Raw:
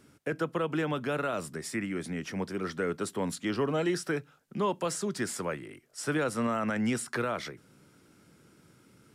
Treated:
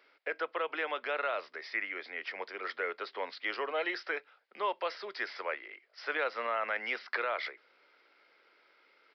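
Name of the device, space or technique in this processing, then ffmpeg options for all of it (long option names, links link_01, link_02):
musical greeting card: -af "aresample=11025,aresample=44100,highpass=frequency=500:width=0.5412,highpass=frequency=500:width=1.3066,equalizer=frequency=2100:width_type=o:width=0.43:gain=8,volume=-1dB"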